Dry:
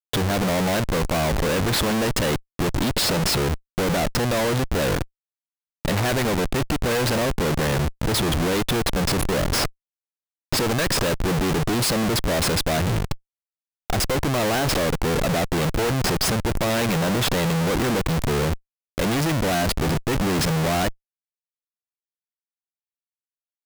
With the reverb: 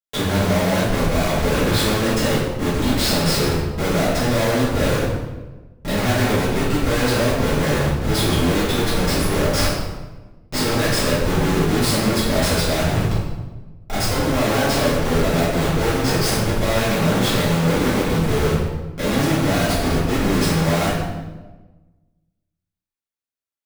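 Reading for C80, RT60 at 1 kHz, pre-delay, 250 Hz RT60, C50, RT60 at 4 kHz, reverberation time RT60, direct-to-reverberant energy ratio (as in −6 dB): 3.0 dB, 1.1 s, 3 ms, 1.5 s, 0.0 dB, 0.85 s, 1.2 s, −11.5 dB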